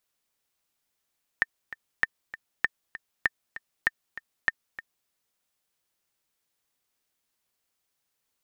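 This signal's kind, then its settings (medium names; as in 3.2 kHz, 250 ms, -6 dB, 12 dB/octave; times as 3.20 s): metronome 196 bpm, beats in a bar 2, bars 6, 1.81 kHz, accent 15.5 dB -8.5 dBFS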